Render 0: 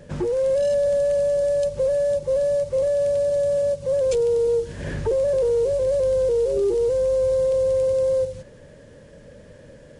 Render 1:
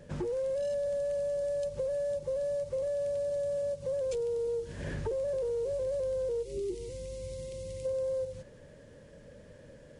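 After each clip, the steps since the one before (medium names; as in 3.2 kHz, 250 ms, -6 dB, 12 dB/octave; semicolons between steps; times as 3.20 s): time-frequency box 6.43–7.85 s, 390–1900 Hz -15 dB; compression 4:1, threshold -24 dBFS, peak gain reduction 5.5 dB; trim -7 dB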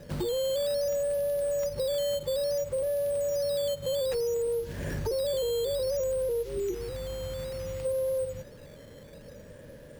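in parallel at -2.5 dB: peak limiter -32 dBFS, peak gain reduction 8 dB; on the sum: decimation with a swept rate 8×, swing 100% 0.59 Hz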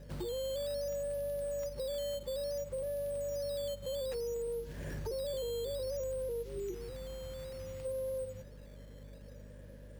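hum 50 Hz, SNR 13 dB; trim -8.5 dB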